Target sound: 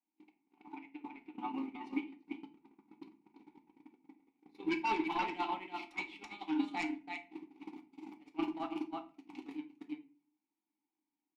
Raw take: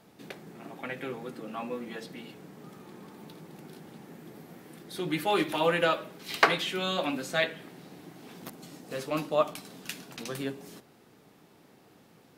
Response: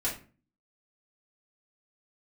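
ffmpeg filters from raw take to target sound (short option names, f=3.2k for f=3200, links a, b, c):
-filter_complex "[0:a]lowshelf=f=170:g=-11.5,asetrate=48000,aresample=44100,asplit=3[a][b][c];[a]bandpass=f=300:t=q:w=8,volume=0dB[d];[b]bandpass=f=870:t=q:w=8,volume=-6dB[e];[c]bandpass=f=2.24k:t=q:w=8,volume=-9dB[f];[d][e][f]amix=inputs=3:normalize=0,aecho=1:1:332:0.631,aeval=exprs='0.0841*sin(PI/2*3.98*val(0)/0.0841)':c=same,acompressor=threshold=-35dB:ratio=16,equalizer=f=480:t=o:w=0.3:g=-13,alimiter=level_in=10dB:limit=-24dB:level=0:latency=1:release=88,volume=-10dB,bandreject=f=50:t=h:w=6,bandreject=f=100:t=h:w=6,bandreject=f=150:t=h:w=6,bandreject=f=200:t=h:w=6,bandreject=f=250:t=h:w=6,bandreject=f=300:t=h:w=6,bandreject=f=350:t=h:w=6,agate=range=-51dB:threshold=-39dB:ratio=16:detection=peak,asplit=2[g][h];[1:a]atrim=start_sample=2205[i];[h][i]afir=irnorm=-1:irlink=0,volume=-9.5dB[j];[g][j]amix=inputs=2:normalize=0,volume=11dB"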